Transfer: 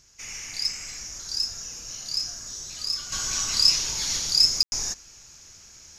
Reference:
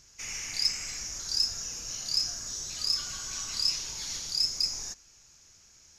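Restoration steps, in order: room tone fill 4.63–4.72; gain correction -9 dB, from 3.12

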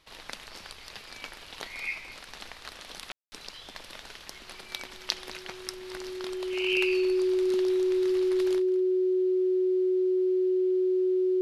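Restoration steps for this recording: notch 370 Hz, Q 30; room tone fill 3.12–3.32; inverse comb 0.213 s -18 dB

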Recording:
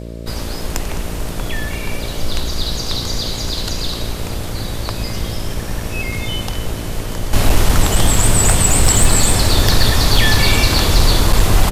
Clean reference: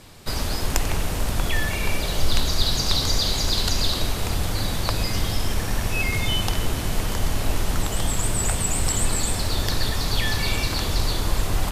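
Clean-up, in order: clip repair -3 dBFS; de-hum 57.4 Hz, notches 11; inverse comb 0.21 s -15 dB; gain 0 dB, from 7.33 s -10.5 dB

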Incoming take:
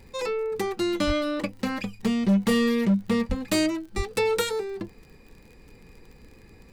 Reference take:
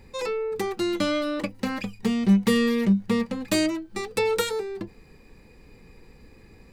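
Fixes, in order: clip repair -16.5 dBFS; de-click; 1.06–1.18 HPF 140 Hz 24 dB/oct; 3.28–3.4 HPF 140 Hz 24 dB/oct; 3.96–4.08 HPF 140 Hz 24 dB/oct

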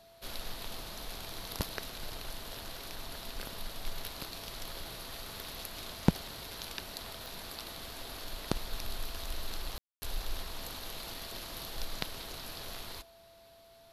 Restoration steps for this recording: clip repair -11.5 dBFS; de-click; notch 670 Hz, Q 30; room tone fill 9.78–10.02

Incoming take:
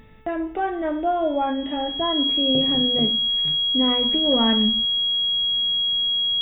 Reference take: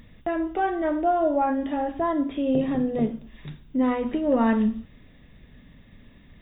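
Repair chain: de-hum 438.2 Hz, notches 6; notch 3300 Hz, Q 30

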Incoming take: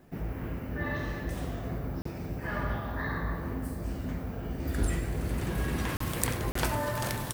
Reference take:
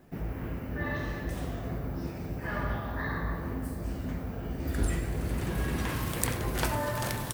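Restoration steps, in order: interpolate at 2.02/5.97/6.52, 34 ms

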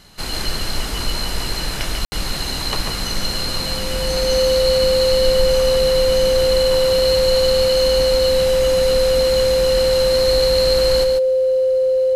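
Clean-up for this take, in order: notch 520 Hz, Q 30; room tone fill 2.05–2.12; inverse comb 0.142 s -5.5 dB

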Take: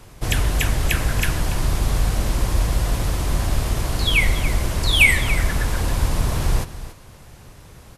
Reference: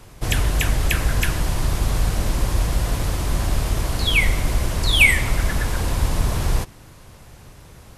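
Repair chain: inverse comb 0.283 s -13.5 dB

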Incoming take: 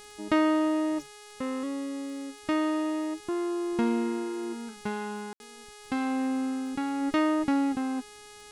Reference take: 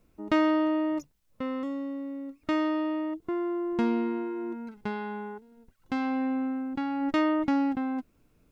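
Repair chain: de-click; de-hum 417.1 Hz, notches 27; room tone fill 5.33–5.4; noise print and reduce 15 dB

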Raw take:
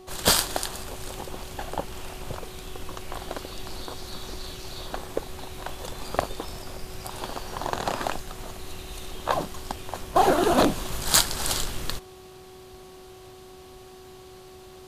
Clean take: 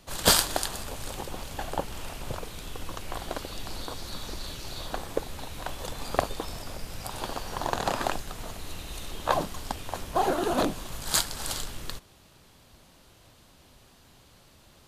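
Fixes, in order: clip repair -2.5 dBFS; de-hum 372.5 Hz, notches 3; gain 0 dB, from 10.16 s -6 dB

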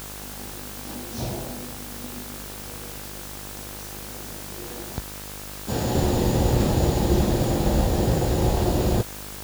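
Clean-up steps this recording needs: de-hum 50.4 Hz, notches 35; denoiser 30 dB, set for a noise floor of -37 dBFS

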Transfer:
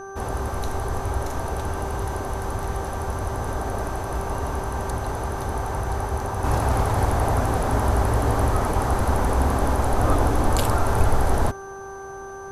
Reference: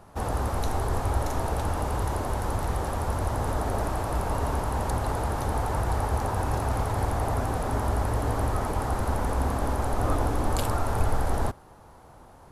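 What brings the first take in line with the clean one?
de-hum 390.8 Hz, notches 4; notch 6100 Hz, Q 30; gain 0 dB, from 6.44 s -5.5 dB

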